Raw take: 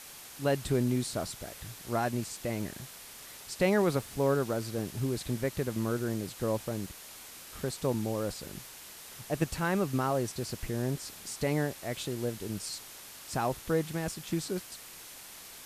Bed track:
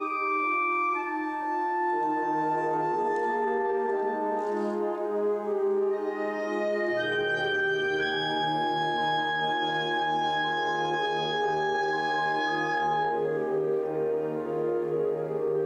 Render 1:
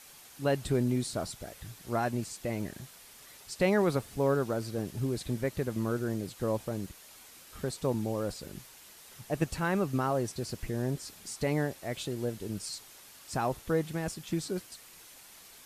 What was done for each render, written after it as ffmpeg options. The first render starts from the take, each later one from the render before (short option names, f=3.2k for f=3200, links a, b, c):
-af "afftdn=nr=6:nf=-48"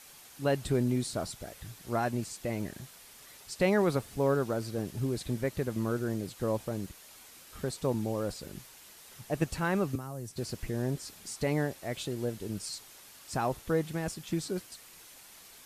-filter_complex "[0:a]asettb=1/sr,asplit=3[a][b][c];[a]atrim=end=9.954[d];[b]atrim=start=9.95:end=10.37,asetpts=PTS-STARTPTS,afade=t=in:d=0.004:c=qsin,afade=t=out:st=0.416:d=0.004:c=qsin,acrossover=split=190|6400[e][f][g];[e]acompressor=threshold=-40dB:ratio=4[h];[f]acompressor=threshold=-44dB:ratio=4[i];[g]acompressor=threshold=-49dB:ratio=4[j];[h][i][j]amix=inputs=3:normalize=0[k];[c]atrim=start=10.366[l];[d][k]acrossfade=d=0.004:c1=hsin:c2=qsin[m];[m][l]acrossfade=d=0.004:c1=qsin:c2=hsin"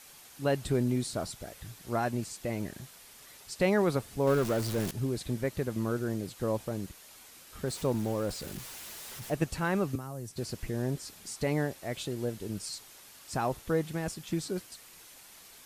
-filter_complex "[0:a]asettb=1/sr,asplit=3[a][b][c];[a]atrim=end=4.274[d];[b]atrim=start=4.27:end=4.91,asetpts=PTS-STARTPTS,afade=t=in:d=0.004:c=qsin,afade=t=out:st=0.636:d=0.004:c=qsin,aeval=exprs='val(0)+0.5*0.0251*sgn(val(0))':c=same[e];[c]atrim=start=4.906[f];[d][e]acrossfade=d=0.004:c1=hsin:c2=qsin[g];[g][f]acrossfade=d=0.004:c1=qsin:c2=hsin,asettb=1/sr,asplit=3[h][i][j];[h]atrim=end=7.674[k];[i]atrim=start=7.67:end=9.35,asetpts=PTS-STARTPTS,afade=t=in:d=0.004:c=qsin,afade=t=out:st=1.676:d=0.004:c=qsin,aeval=exprs='val(0)+0.5*0.00794*sgn(val(0))':c=same[l];[j]atrim=start=9.346[m];[k][l]acrossfade=d=0.004:c1=hsin:c2=qsin[n];[n][m]acrossfade=d=0.004:c1=qsin:c2=hsin"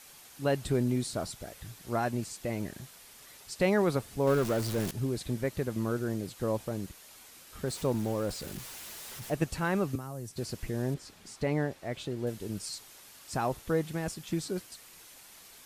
-filter_complex "[0:a]asettb=1/sr,asplit=3[a][b][c];[a]atrim=end=10.944[d];[b]atrim=start=10.94:end=12.27,asetpts=PTS-STARTPTS,afade=t=in:d=0.004:c=qsin,afade=t=out:st=1.326:d=0.004:c=qsin,lowpass=f=3.3k:p=1[e];[c]atrim=start=12.266[f];[d][e]acrossfade=d=0.004:c1=hsin:c2=qsin[g];[g][f]acrossfade=d=0.004:c1=qsin:c2=hsin"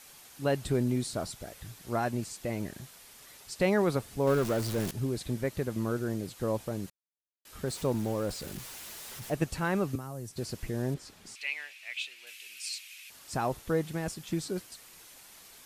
-filter_complex "[0:a]asettb=1/sr,asplit=3[a][b][c];[a]atrim=end=11.354[d];[b]atrim=start=11.35:end=13.1,asetpts=PTS-STARTPTS,afade=t=in:d=0.004:c=qsin,afade=t=out:st=1.746:d=0.004:c=qsin,highpass=f=2.5k:t=q:w=6.7[e];[c]atrim=start=13.096[f];[d][e]acrossfade=d=0.004:c1=hsin:c2=qsin[g];[g][f]acrossfade=d=0.004:c1=qsin:c2=hsin,asplit=3[h][i][j];[h]atrim=end=6.9,asetpts=PTS-STARTPTS,afade=t=out:st=6.896:d=0.004:c=hsin[k];[i]atrim=start=6.9:end=7.45,asetpts=PTS-STARTPTS,volume=0[l];[j]atrim=start=7.45,asetpts=PTS-STARTPTS,afade=t=in:d=0.004:c=hsin[m];[k][l][m]concat=n=3:v=0:a=1"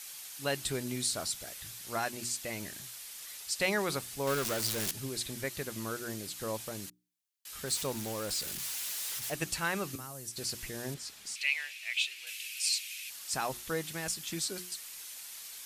-af "tiltshelf=f=1.3k:g=-8.5,bandreject=f=60:t=h:w=6,bandreject=f=120:t=h:w=6,bandreject=f=180:t=h:w=6,bandreject=f=240:t=h:w=6,bandreject=f=300:t=h:w=6,bandreject=f=360:t=h:w=6"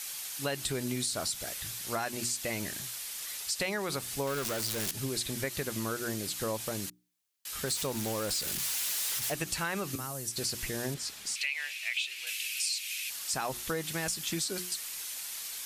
-filter_complex "[0:a]asplit=2[a][b];[b]alimiter=level_in=1.5dB:limit=-24dB:level=0:latency=1,volume=-1.5dB,volume=0dB[c];[a][c]amix=inputs=2:normalize=0,acompressor=threshold=-29dB:ratio=6"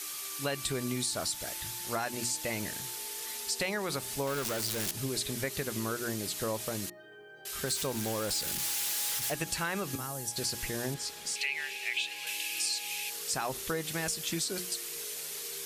-filter_complex "[1:a]volume=-24.5dB[a];[0:a][a]amix=inputs=2:normalize=0"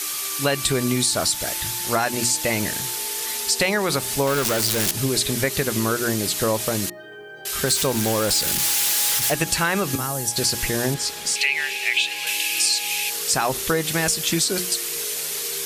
-af "volume=12dB"